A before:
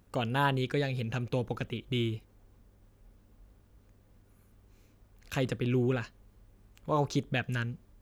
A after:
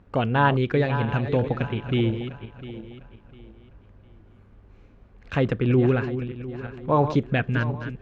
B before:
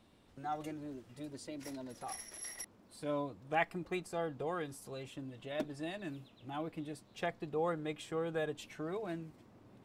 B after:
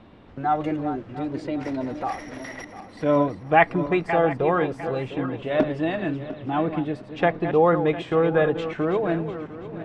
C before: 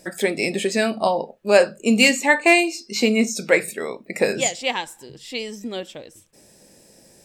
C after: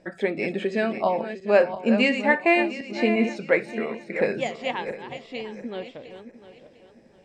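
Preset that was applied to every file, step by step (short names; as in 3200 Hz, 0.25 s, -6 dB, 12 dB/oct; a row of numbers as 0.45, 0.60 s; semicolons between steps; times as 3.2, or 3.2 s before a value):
regenerating reverse delay 0.351 s, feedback 53%, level -10 dB; LPF 2300 Hz 12 dB/oct; match loudness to -24 LUFS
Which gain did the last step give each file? +8.5, +16.5, -3.5 dB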